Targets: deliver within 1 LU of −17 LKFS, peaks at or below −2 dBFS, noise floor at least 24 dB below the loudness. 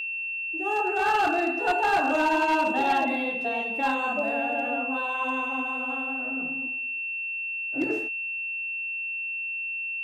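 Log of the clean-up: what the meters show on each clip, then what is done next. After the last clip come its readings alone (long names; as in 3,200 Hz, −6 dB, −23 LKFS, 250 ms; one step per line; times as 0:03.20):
share of clipped samples 0.9%; peaks flattened at −18.0 dBFS; interfering tone 2,700 Hz; level of the tone −29 dBFS; integrated loudness −26.0 LKFS; sample peak −18.0 dBFS; target loudness −17.0 LKFS
→ clipped peaks rebuilt −18 dBFS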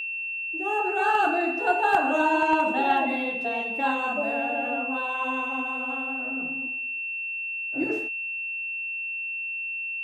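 share of clipped samples 0.0%; interfering tone 2,700 Hz; level of the tone −29 dBFS
→ notch filter 2,700 Hz, Q 30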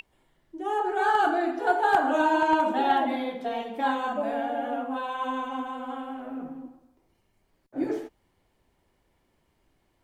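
interfering tone none found; integrated loudness −27.0 LKFS; sample peak −8.5 dBFS; target loudness −17.0 LKFS
→ level +10 dB
brickwall limiter −2 dBFS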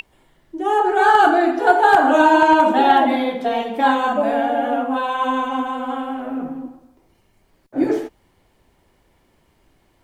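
integrated loudness −17.0 LKFS; sample peak −2.0 dBFS; background noise floor −61 dBFS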